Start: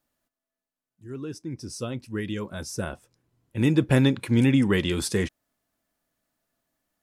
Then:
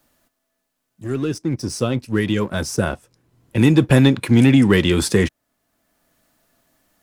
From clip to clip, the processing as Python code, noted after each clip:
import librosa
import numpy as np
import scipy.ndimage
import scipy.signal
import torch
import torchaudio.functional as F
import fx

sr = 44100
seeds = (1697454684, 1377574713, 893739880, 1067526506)

y = fx.leveller(x, sr, passes=1)
y = fx.band_squash(y, sr, depth_pct=40)
y = y * librosa.db_to_amplitude(5.0)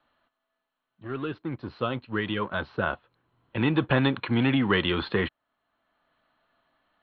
y = scipy.signal.sosfilt(scipy.signal.cheby1(6, 6, 4300.0, 'lowpass', fs=sr, output='sos'), x)
y = fx.peak_eq(y, sr, hz=1400.0, db=7.5, octaves=2.6)
y = y * librosa.db_to_amplitude(-6.5)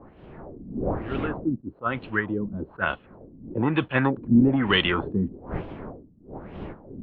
y = fx.dmg_wind(x, sr, seeds[0], corner_hz=380.0, level_db=-38.0)
y = fx.filter_lfo_lowpass(y, sr, shape='sine', hz=1.1, low_hz=220.0, high_hz=3200.0, q=2.9)
y = fx.attack_slew(y, sr, db_per_s=420.0)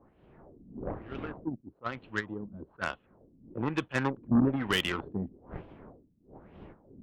y = fx.cheby_harmonics(x, sr, harmonics=(5, 7), levels_db=(-16, -15), full_scale_db=-6.5)
y = y * librosa.db_to_amplitude(-8.0)